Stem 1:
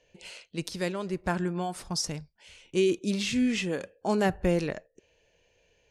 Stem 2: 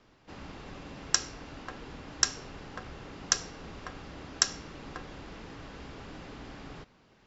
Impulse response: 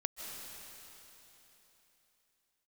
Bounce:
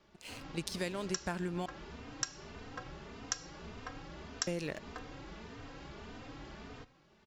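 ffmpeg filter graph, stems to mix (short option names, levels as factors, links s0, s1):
-filter_complex "[0:a]aeval=exprs='sgn(val(0))*max(abs(val(0))-0.00266,0)':c=same,adynamicequalizer=threshold=0.00794:dfrequency=1800:dqfactor=0.7:tfrequency=1800:tqfactor=0.7:attack=5:release=100:ratio=0.375:range=2.5:mode=boostabove:tftype=highshelf,volume=0.891,asplit=3[s0][s1][s2];[s0]atrim=end=1.66,asetpts=PTS-STARTPTS,afade=t=out:st=1.656:d=0.004:c=hsin[s3];[s1]atrim=start=1.66:end=4.47,asetpts=PTS-STARTPTS,volume=0[s4];[s2]atrim=start=4.47,asetpts=PTS-STARTPTS,afade=t=in:d=0.004:c=hsin[s5];[s3][s4][s5]concat=n=3:v=0:a=1[s6];[1:a]asplit=2[s7][s8];[s8]adelay=3.1,afreqshift=1.7[s9];[s7][s9]amix=inputs=2:normalize=1,volume=0.944[s10];[s6][s10]amix=inputs=2:normalize=0,acompressor=threshold=0.0224:ratio=5"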